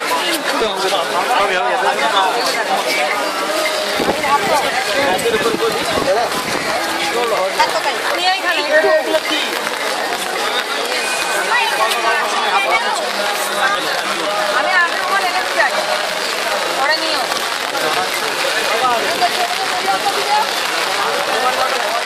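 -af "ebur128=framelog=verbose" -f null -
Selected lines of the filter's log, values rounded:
Integrated loudness:
  I:         -15.5 LUFS
  Threshold: -25.5 LUFS
Loudness range:
  LRA:         0.8 LU
  Threshold: -35.5 LUFS
  LRA low:   -16.0 LUFS
  LRA high:  -15.2 LUFS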